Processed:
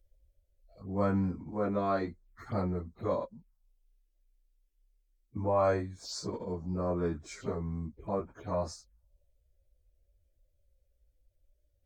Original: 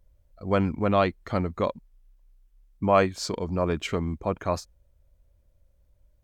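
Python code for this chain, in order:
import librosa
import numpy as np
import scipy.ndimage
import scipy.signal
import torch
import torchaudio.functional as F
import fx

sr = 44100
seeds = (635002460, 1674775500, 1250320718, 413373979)

y = fx.stretch_vocoder_free(x, sr, factor=1.9)
y = fx.env_phaser(y, sr, low_hz=160.0, high_hz=2900.0, full_db=-31.5)
y = y * librosa.db_to_amplitude(-4.0)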